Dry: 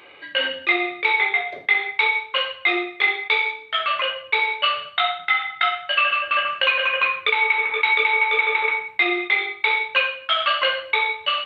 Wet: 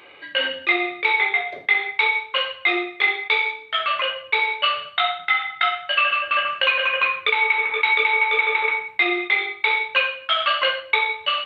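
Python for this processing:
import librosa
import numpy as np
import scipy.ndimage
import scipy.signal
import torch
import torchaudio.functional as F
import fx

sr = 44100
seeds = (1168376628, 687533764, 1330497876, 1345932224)

y = fx.transient(x, sr, attack_db=2, sustain_db=-3, at=(10.67, 11.1))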